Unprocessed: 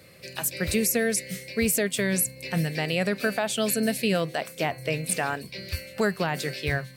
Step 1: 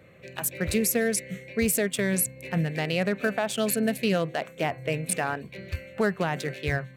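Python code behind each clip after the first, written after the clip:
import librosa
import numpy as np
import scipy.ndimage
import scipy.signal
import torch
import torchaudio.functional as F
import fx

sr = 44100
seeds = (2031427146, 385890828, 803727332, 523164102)

y = fx.wiener(x, sr, points=9)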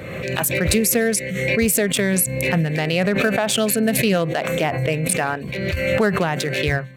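y = fx.pre_swell(x, sr, db_per_s=33.0)
y = F.gain(torch.from_numpy(y), 6.0).numpy()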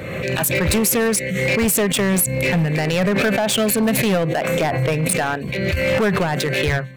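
y = np.clip(10.0 ** (17.0 / 20.0) * x, -1.0, 1.0) / 10.0 ** (17.0 / 20.0)
y = F.gain(torch.from_numpy(y), 3.0).numpy()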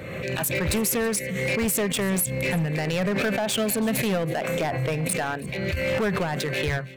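y = x + 10.0 ** (-19.5 / 20.0) * np.pad(x, (int(327 * sr / 1000.0), 0))[:len(x)]
y = F.gain(torch.from_numpy(y), -6.5).numpy()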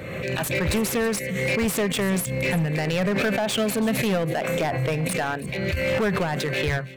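y = fx.slew_limit(x, sr, full_power_hz=320.0)
y = F.gain(torch.from_numpy(y), 1.5).numpy()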